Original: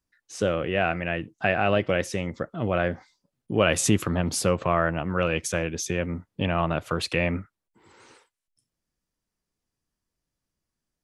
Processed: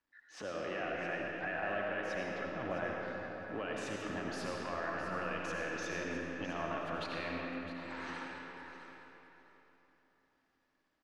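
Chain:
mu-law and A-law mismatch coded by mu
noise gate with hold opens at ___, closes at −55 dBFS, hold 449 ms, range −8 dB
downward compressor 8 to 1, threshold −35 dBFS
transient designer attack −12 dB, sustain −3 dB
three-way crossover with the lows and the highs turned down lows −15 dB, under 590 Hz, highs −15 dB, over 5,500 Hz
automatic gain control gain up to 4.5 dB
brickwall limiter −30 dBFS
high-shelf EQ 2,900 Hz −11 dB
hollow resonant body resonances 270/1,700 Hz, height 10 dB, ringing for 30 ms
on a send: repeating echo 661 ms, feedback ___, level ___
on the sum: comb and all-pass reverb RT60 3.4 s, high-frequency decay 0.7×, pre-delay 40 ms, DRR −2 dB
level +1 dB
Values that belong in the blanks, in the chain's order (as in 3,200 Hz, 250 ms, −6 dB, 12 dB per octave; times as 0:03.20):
−53 dBFS, 16%, −12 dB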